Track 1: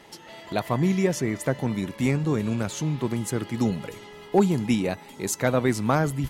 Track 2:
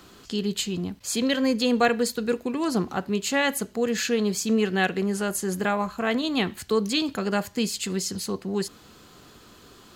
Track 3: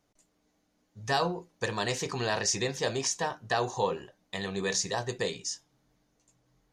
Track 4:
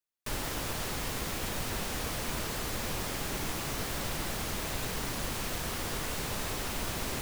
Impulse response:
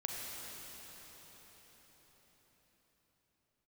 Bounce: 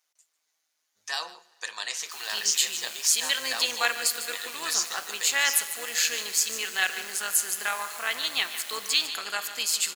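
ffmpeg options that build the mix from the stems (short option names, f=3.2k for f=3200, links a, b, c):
-filter_complex "[1:a]adelay=2000,volume=1.5dB,asplit=3[a][b][c];[b]volume=-9dB[d];[c]volume=-10.5dB[e];[2:a]volume=1.5dB,asplit=3[f][g][h];[g]volume=-24dB[i];[h]volume=-18dB[j];[3:a]adelay=1850,volume=-10dB,asplit=2[k][l];[l]volume=-10dB[m];[4:a]atrim=start_sample=2205[n];[d][i][m]amix=inputs=3:normalize=0[o];[o][n]afir=irnorm=-1:irlink=0[p];[e][j]amix=inputs=2:normalize=0,aecho=0:1:149:1[q];[a][f][k][p][q]amix=inputs=5:normalize=0,highpass=1.4k,highshelf=f=5.9k:g=8,tremolo=f=160:d=0.462"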